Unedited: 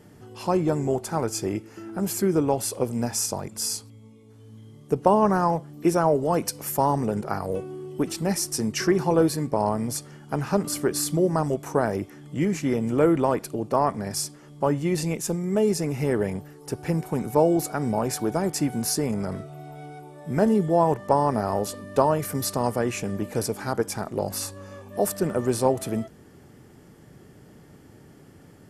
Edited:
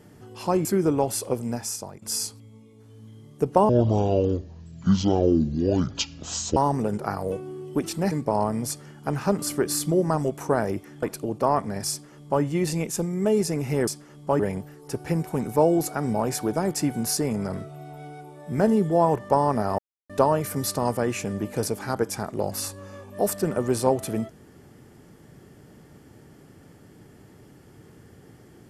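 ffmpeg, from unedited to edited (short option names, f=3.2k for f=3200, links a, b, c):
-filter_complex "[0:a]asplit=11[a][b][c][d][e][f][g][h][i][j][k];[a]atrim=end=0.652[l];[b]atrim=start=2.148:end=3.52,asetpts=PTS-STARTPTS,afade=t=out:st=0.592:d=0.78:silence=0.266073[m];[c]atrim=start=3.52:end=5.194,asetpts=PTS-STARTPTS,afade=t=in:d=0.004:c=hsin:silence=0.266073[n];[d]atrim=start=5.19:end=6.8,asetpts=PTS-STARTPTS,asetrate=24696,aresample=44100,atrim=end_sample=126787,asetpts=PTS-STARTPTS[o];[e]atrim=start=6.796:end=8.352[p];[f]atrim=start=9.368:end=12.282[q];[g]atrim=start=13.328:end=16.182[r];[h]atrim=start=14.208:end=14.732[s];[i]atrim=start=16.178:end=21.57,asetpts=PTS-STARTPTS,afade=t=out:st=5.388:d=0.004:c=hsin[t];[j]atrim=start=21.57:end=21.88,asetpts=PTS-STARTPTS,volume=0[u];[k]atrim=start=21.88,asetpts=PTS-STARTPTS,afade=t=in:d=0.004:c=hsin[v];[m][n]concat=n=2:v=0:a=1[w];[l][w]acrossfade=d=0.004:c1=hsin:c2=hsin[x];[x][o]acrossfade=d=0.004:c1=hsin:c2=hsin[y];[y][p]acrossfade=d=0.004:c1=hsin:c2=hsin[z];[z][q]acrossfade=d=0.004:c1=hsin:c2=hsin[aa];[aa][r]acrossfade=d=0.004:c1=hsin:c2=hsin[ab];[ab][s]acrossfade=d=0.004:c1=hsin:c2=hsin[ac];[t][u][v]concat=n=3:v=0:a=1[ad];[ac][ad]acrossfade=d=0.004:c1=hsin:c2=hsin"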